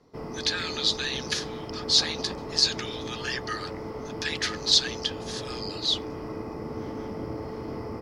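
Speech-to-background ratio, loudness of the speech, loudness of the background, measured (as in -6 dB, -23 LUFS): 10.0 dB, -26.5 LUFS, -36.5 LUFS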